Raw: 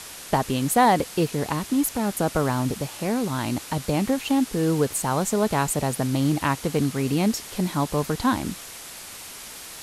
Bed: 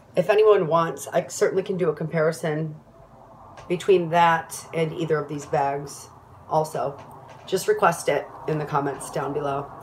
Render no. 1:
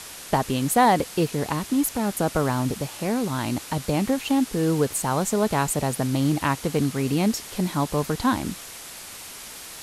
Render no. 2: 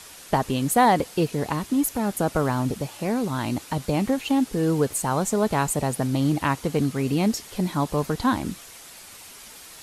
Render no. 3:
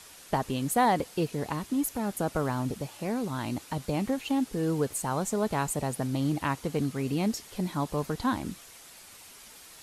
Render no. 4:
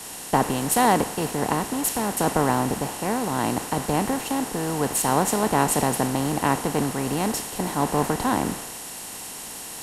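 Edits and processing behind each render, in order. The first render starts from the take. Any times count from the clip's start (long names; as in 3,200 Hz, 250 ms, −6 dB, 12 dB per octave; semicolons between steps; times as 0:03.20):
no processing that can be heard
broadband denoise 6 dB, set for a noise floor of −40 dBFS
level −6 dB
compressor on every frequency bin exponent 0.4; multiband upward and downward expander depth 100%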